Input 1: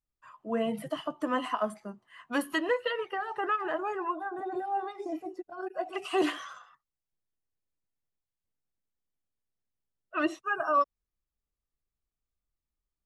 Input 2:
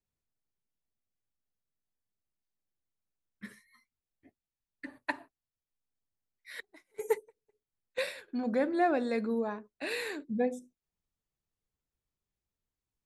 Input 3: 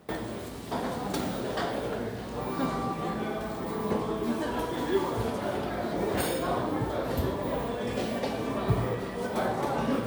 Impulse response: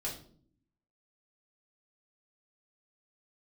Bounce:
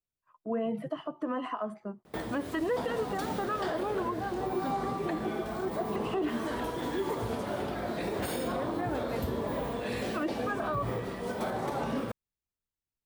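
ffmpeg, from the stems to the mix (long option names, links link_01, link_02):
-filter_complex "[0:a]agate=range=-31dB:threshold=-49dB:ratio=16:detection=peak,lowpass=frequency=1200:poles=1,equalizer=frequency=390:width=1.5:gain=2.5,volume=2dB[link_01];[1:a]volume=-6dB[link_02];[2:a]adelay=2050,volume=-2.5dB[link_03];[link_01][link_02][link_03]amix=inputs=3:normalize=0,alimiter=limit=-23dB:level=0:latency=1:release=81"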